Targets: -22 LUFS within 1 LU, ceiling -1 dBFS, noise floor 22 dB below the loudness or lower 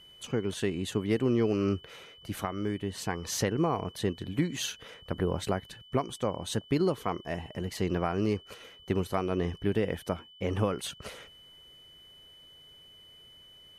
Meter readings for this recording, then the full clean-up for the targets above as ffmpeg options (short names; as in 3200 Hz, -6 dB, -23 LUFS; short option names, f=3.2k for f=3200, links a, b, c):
steady tone 3000 Hz; tone level -52 dBFS; loudness -31.5 LUFS; peak -15.5 dBFS; loudness target -22.0 LUFS
-> -af "bandreject=f=3k:w=30"
-af "volume=9.5dB"